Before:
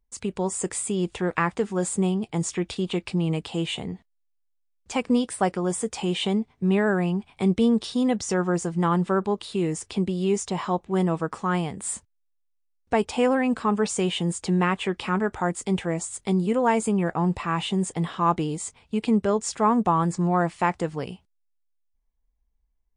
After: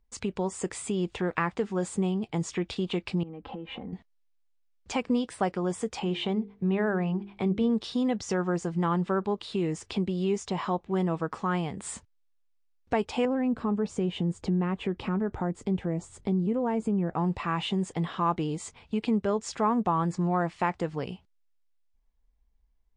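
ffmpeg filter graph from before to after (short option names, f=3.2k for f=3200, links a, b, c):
-filter_complex "[0:a]asettb=1/sr,asplit=3[a][b][c];[a]atrim=end=3.234[d];[b]atrim=start=3.23:end=3.93,asetpts=PTS-STARTPTS,afade=t=in:d=0.004:c=qsin,afade=t=out:st=0.696:d=0.004:c=qsin,lowpass=1.3k,aecho=1:1:3.8:0.66,atrim=end_sample=30870,acompressor=threshold=-36dB:ratio=12:attack=3.2:release=140:knee=1:detection=peak[e];[c]atrim=start=3.926[f];[d][e]acrossfade=d=0.004:c1=hsin:c2=qsin[g];[g][f]acrossfade=d=0.004:c1=qsin:c2=hsin,asettb=1/sr,asplit=3[h][i][j];[h]atrim=end=5.994[k];[i]atrim=start=5.99:end=7.7,asetpts=PTS-STARTPTS,afade=t=in:d=0.004:c=qsin,afade=t=out:st=1.706:d=0.004:c=qsin,lowpass=f=2.8k:p=1,bandreject=f=50:t=h:w=6,bandreject=f=100:t=h:w=6,bandreject=f=150:t=h:w=6,bandreject=f=200:t=h:w=6,bandreject=f=250:t=h:w=6,bandreject=f=300:t=h:w=6,bandreject=f=350:t=h:w=6,bandreject=f=400:t=h:w=6,bandreject=f=450:t=h:w=6[l];[j]atrim=start=7.696[m];[k][l]acrossfade=d=0.004:c1=hsin:c2=qsin[n];[n][m]acrossfade=d=0.004:c1=qsin:c2=hsin,asettb=1/sr,asplit=3[o][p][q];[o]atrim=end=13.254[r];[p]atrim=start=13.25:end=17.14,asetpts=PTS-STARTPTS,afade=t=in:d=0.004:c=qsin,afade=t=out:st=3.886:d=0.004:c=qsin,tiltshelf=f=700:g=7.5,acompressor=threshold=-28dB:ratio=1.5:attack=3.2:release=140:knee=1:detection=peak[s];[q]atrim=start=17.136[t];[r][s]acrossfade=d=0.004:c1=hsin:c2=qsin[u];[u][t]acrossfade=d=0.004:c1=qsin:c2=hsin,lowpass=5.4k,acompressor=threshold=-41dB:ratio=1.5,volume=3.5dB"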